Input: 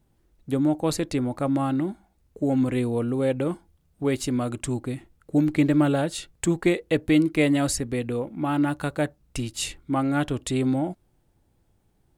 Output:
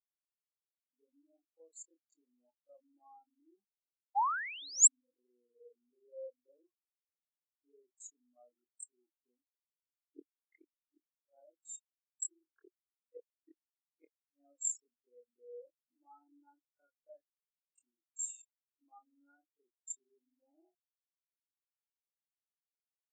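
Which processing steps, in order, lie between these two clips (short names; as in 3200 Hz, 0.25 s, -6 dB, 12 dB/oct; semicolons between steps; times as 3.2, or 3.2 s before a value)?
level quantiser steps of 18 dB; flipped gate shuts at -17 dBFS, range -29 dB; granular stretch 1.9×, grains 0.104 s; painted sound rise, 4.15–4.88, 750–8100 Hz -32 dBFS; HPF 460 Hz 12 dB/oct; bell 7400 Hz +11.5 dB 0.57 oct; spectral expander 4:1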